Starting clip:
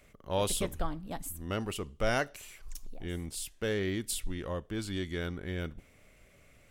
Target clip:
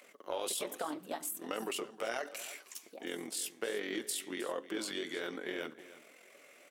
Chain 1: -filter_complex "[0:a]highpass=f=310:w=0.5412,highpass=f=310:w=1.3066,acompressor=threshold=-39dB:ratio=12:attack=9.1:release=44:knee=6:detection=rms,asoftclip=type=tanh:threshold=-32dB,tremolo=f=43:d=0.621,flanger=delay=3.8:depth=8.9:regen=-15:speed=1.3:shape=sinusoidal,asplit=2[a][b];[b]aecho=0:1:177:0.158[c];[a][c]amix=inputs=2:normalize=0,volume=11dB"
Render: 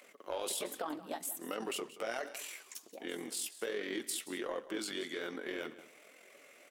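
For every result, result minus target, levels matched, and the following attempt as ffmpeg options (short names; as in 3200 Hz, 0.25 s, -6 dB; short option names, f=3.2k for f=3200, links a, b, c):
soft clip: distortion +19 dB; echo 0.136 s early
-filter_complex "[0:a]highpass=f=310:w=0.5412,highpass=f=310:w=1.3066,acompressor=threshold=-39dB:ratio=12:attack=9.1:release=44:knee=6:detection=rms,asoftclip=type=tanh:threshold=-21dB,tremolo=f=43:d=0.621,flanger=delay=3.8:depth=8.9:regen=-15:speed=1.3:shape=sinusoidal,asplit=2[a][b];[b]aecho=0:1:177:0.158[c];[a][c]amix=inputs=2:normalize=0,volume=11dB"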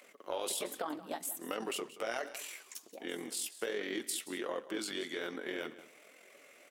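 echo 0.136 s early
-filter_complex "[0:a]highpass=f=310:w=0.5412,highpass=f=310:w=1.3066,acompressor=threshold=-39dB:ratio=12:attack=9.1:release=44:knee=6:detection=rms,asoftclip=type=tanh:threshold=-21dB,tremolo=f=43:d=0.621,flanger=delay=3.8:depth=8.9:regen=-15:speed=1.3:shape=sinusoidal,asplit=2[a][b];[b]aecho=0:1:313:0.158[c];[a][c]amix=inputs=2:normalize=0,volume=11dB"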